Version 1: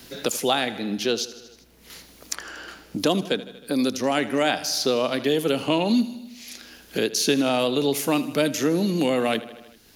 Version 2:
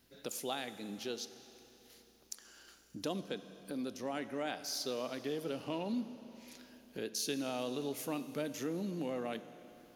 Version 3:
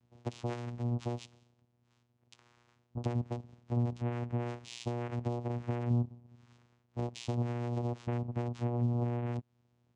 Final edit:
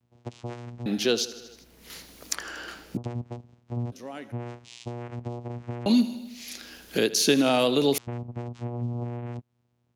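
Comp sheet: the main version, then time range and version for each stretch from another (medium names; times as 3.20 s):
3
0.86–2.97 s: from 1
3.92–4.32 s: from 2
5.86–7.98 s: from 1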